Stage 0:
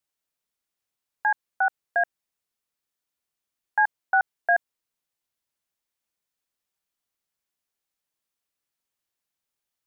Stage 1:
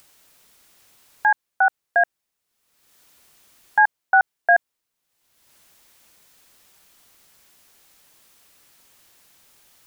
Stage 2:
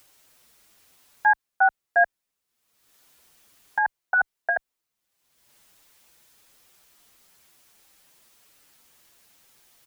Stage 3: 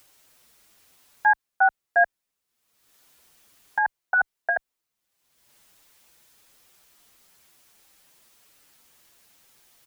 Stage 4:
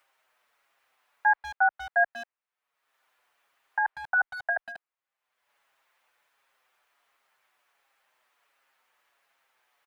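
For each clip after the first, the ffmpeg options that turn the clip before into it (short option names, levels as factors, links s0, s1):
-af "acompressor=mode=upward:threshold=0.00794:ratio=2.5,volume=1.88"
-filter_complex "[0:a]asplit=2[s0][s1];[s1]adelay=6.9,afreqshift=-1.4[s2];[s0][s2]amix=inputs=2:normalize=1"
-af anull
-filter_complex "[0:a]acrossover=split=570 2500:gain=0.0708 1 0.112[s0][s1][s2];[s0][s1][s2]amix=inputs=3:normalize=0,asplit=2[s3][s4];[s4]adelay=190,highpass=300,lowpass=3400,asoftclip=type=hard:threshold=0.0891,volume=0.251[s5];[s3][s5]amix=inputs=2:normalize=0,volume=0.794"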